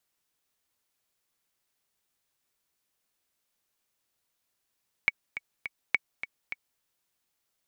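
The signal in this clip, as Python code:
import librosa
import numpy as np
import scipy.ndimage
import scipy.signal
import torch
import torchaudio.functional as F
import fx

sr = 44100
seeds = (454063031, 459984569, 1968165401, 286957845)

y = fx.click_track(sr, bpm=208, beats=3, bars=2, hz=2240.0, accent_db=12.0, level_db=-9.0)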